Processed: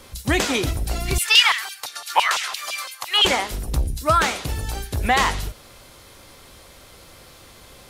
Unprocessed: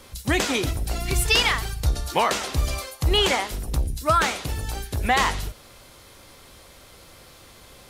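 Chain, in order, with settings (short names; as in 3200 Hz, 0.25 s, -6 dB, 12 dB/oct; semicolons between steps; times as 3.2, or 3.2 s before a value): 1.18–3.25 LFO high-pass saw down 5.9 Hz 820–3400 Hz; gain +2 dB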